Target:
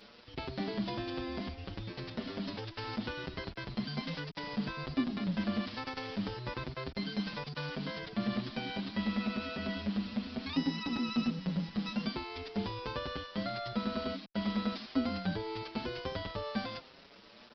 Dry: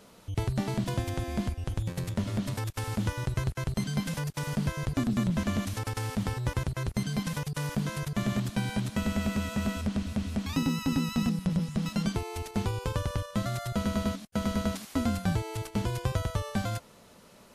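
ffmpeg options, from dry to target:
-filter_complex "[0:a]acontrast=56,lowshelf=f=170:t=q:w=1.5:g=-9,bandreject=f=332.4:t=h:w=4,bandreject=f=664.8:t=h:w=4,bandreject=f=997.2:t=h:w=4,bandreject=f=1.3296k:t=h:w=4,asplit=2[a][b];[b]volume=31dB,asoftclip=hard,volume=-31dB,volume=-6.5dB[c];[a][c]amix=inputs=2:normalize=0,aemphasis=mode=production:type=50kf,aresample=11025,acrusher=bits=6:mix=0:aa=0.000001,aresample=44100,asplit=2[d][e];[e]adelay=6.6,afreqshift=1.1[f];[d][f]amix=inputs=2:normalize=1,volume=-9dB"

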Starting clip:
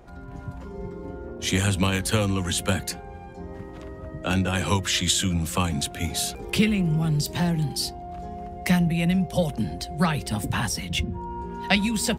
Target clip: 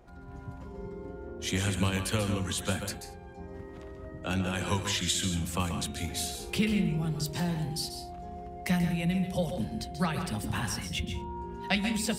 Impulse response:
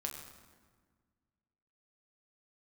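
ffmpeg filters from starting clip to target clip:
-filter_complex "[0:a]bandreject=f=149.2:t=h:w=4,bandreject=f=298.4:t=h:w=4,bandreject=f=447.6:t=h:w=4,bandreject=f=596.8:t=h:w=4,bandreject=f=746:t=h:w=4,bandreject=f=895.2:t=h:w=4,bandreject=f=1.0444k:t=h:w=4,bandreject=f=1.1936k:t=h:w=4,bandreject=f=1.3428k:t=h:w=4,bandreject=f=1.492k:t=h:w=4,bandreject=f=1.6412k:t=h:w=4,bandreject=f=1.7904k:t=h:w=4,bandreject=f=1.9396k:t=h:w=4,bandreject=f=2.0888k:t=h:w=4,bandreject=f=2.238k:t=h:w=4,bandreject=f=2.3872k:t=h:w=4,bandreject=f=2.5364k:t=h:w=4,bandreject=f=2.6856k:t=h:w=4,bandreject=f=2.8348k:t=h:w=4,bandreject=f=2.984k:t=h:w=4,bandreject=f=3.1332k:t=h:w=4,bandreject=f=3.2824k:t=h:w=4,bandreject=f=3.4316k:t=h:w=4,bandreject=f=3.5808k:t=h:w=4,bandreject=f=3.73k:t=h:w=4,bandreject=f=3.8792k:t=h:w=4,bandreject=f=4.0284k:t=h:w=4,asplit=2[a][b];[1:a]atrim=start_sample=2205,atrim=end_sample=4410,adelay=136[c];[b][c]afir=irnorm=-1:irlink=0,volume=-6.5dB[d];[a][d]amix=inputs=2:normalize=0,volume=-7dB"

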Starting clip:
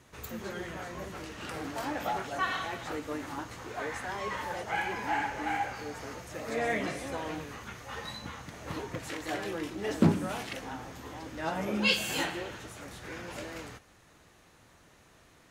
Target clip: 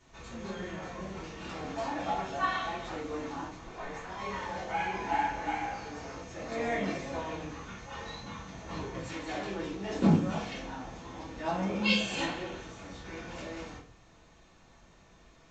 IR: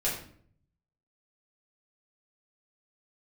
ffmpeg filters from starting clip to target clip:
-filter_complex "[0:a]asettb=1/sr,asplit=3[a][b][c];[a]atrim=end=3.484[d];[b]atrim=start=3.48:end=4.17,asetpts=PTS-STARTPTS,afade=t=in:d=0.004:c=qsin,afade=t=out:st=0.686:d=0.004:c=qsin,tremolo=f=290:d=0.857[e];[c]atrim=start=4.166[f];[d][e]acrossfade=d=0.004:c1=hsin:c2=qsin[g];[g][f]acrossfade=d=0.004:c1=qsin:c2=hsin[h];[1:a]atrim=start_sample=2205,asetrate=66150,aresample=44100[i];[h][i]afir=irnorm=-1:irlink=0,volume=-5dB" -ar 16000 -c:a pcm_alaw

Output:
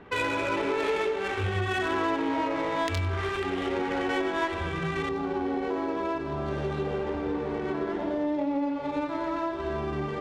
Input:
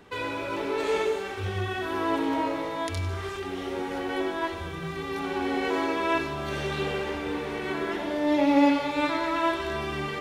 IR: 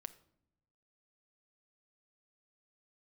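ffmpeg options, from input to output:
-af "acompressor=threshold=-28dB:ratio=12,asetnsamples=n=441:p=0,asendcmd='5.09 equalizer g -8.5',equalizer=f=2.4k:t=o:w=1.8:g=4,adynamicsmooth=sensitivity=6:basefreq=1.9k,volume=4dB"

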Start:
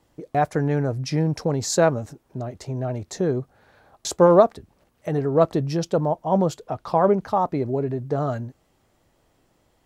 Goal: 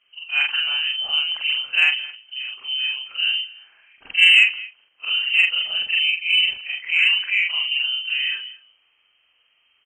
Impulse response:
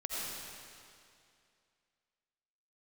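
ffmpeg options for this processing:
-af "afftfilt=real='re':imag='-im':win_size=4096:overlap=0.75,adynamicequalizer=threshold=0.0112:dfrequency=2200:dqfactor=1:tfrequency=2200:tqfactor=1:attack=5:release=100:ratio=0.375:range=2:mode=boostabove:tftype=bell,lowpass=f=2.7k:t=q:w=0.5098,lowpass=f=2.7k:t=q:w=0.6013,lowpass=f=2.7k:t=q:w=0.9,lowpass=f=2.7k:t=q:w=2.563,afreqshift=-3200,aecho=1:1:215:0.0891,acontrast=28"

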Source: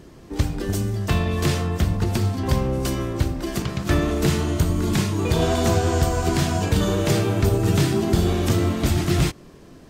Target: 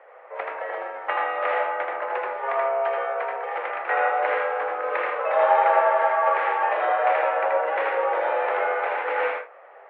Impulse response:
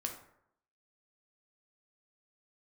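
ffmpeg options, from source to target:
-filter_complex "[0:a]asplit=2[a][b];[1:a]atrim=start_sample=2205,atrim=end_sample=3969,adelay=80[c];[b][c]afir=irnorm=-1:irlink=0,volume=-1dB[d];[a][d]amix=inputs=2:normalize=0,highpass=f=460:t=q:w=0.5412,highpass=f=460:t=q:w=1.307,lowpass=f=2.1k:t=q:w=0.5176,lowpass=f=2.1k:t=q:w=0.7071,lowpass=f=2.1k:t=q:w=1.932,afreqshift=150,volume=4dB"

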